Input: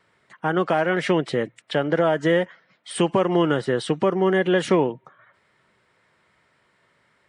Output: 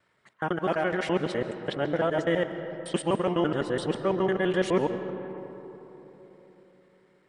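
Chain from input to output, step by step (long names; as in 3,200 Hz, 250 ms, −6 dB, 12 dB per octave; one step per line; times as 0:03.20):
reversed piece by piece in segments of 84 ms
on a send: convolution reverb RT60 3.8 s, pre-delay 100 ms, DRR 9.5 dB
on the sum: level −6 dB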